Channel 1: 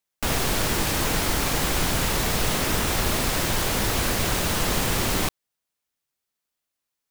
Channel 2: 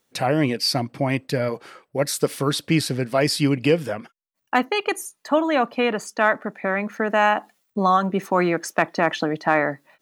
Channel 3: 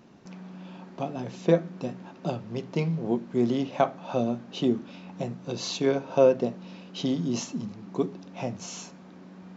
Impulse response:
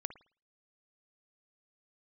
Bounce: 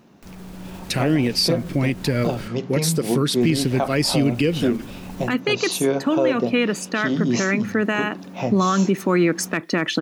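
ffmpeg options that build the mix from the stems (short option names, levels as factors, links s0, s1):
-filter_complex "[0:a]acrossover=split=420[s0][s1];[s1]acompressor=threshold=0.02:ratio=6[s2];[s0][s2]amix=inputs=2:normalize=0,alimiter=limit=0.0668:level=0:latency=1,acompressor=mode=upward:threshold=0.00398:ratio=2.5,volume=0.251,asplit=3[s3][s4][s5];[s3]atrim=end=2.48,asetpts=PTS-STARTPTS,afade=t=out:st=2.476:d=0.004:c=hsin[s6];[s4]atrim=start=2.48:end=3.41,asetpts=PTS-STARTPTS,volume=0[s7];[s5]atrim=start=3.41,asetpts=PTS-STARTPTS,afade=t=in:d=0.004:c=hsin[s8];[s6][s7][s8]concat=n=3:v=0:a=1[s9];[1:a]firequalizer=gain_entry='entry(360,0);entry(740,-16);entry(1200,-6);entry(2400,-2)':delay=0.05:min_phase=1,adelay=750,volume=1.33[s10];[2:a]volume=1.26[s11];[s9][s10][s11]amix=inputs=3:normalize=0,dynaudnorm=f=110:g=11:m=3.76,alimiter=limit=0.335:level=0:latency=1:release=137"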